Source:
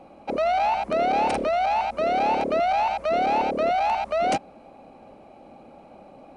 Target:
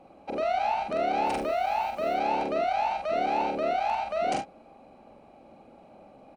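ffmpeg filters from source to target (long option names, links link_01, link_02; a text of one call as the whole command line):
ffmpeg -i in.wav -filter_complex "[0:a]asettb=1/sr,asplit=3[link_01][link_02][link_03];[link_01]atrim=end=1.264[link_04];[link_02]atrim=start=1.26:end=2.14,asetpts=PTS-STARTPTS,afade=type=in:duration=0.004:curve=qsin,afade=type=out:start_time=0.876:duration=0.004:curve=qsin,acrusher=bits=7:mix=0:aa=0.5[link_05];[link_03]atrim=start=2.136[link_06];[link_04][link_05]acrossfade=duration=0.004:curve1=hsin:curve2=qsin[link_07];[link_07][link_06]acrossfade=duration=0.004:curve1=qsin:curve2=hsin,aecho=1:1:44|74:0.668|0.251,volume=-6.5dB" out.wav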